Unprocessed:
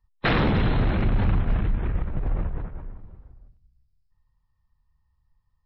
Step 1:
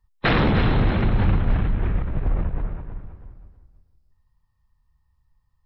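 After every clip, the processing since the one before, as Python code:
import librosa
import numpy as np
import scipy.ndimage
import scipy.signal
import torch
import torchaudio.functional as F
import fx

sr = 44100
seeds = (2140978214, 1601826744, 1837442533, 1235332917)

y = fx.echo_feedback(x, sr, ms=320, feedback_pct=25, wet_db=-10.5)
y = F.gain(torch.from_numpy(y), 2.5).numpy()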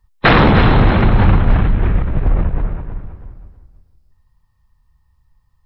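y = fx.dynamic_eq(x, sr, hz=1000.0, q=0.94, threshold_db=-35.0, ratio=4.0, max_db=4)
y = F.gain(torch.from_numpy(y), 8.0).numpy()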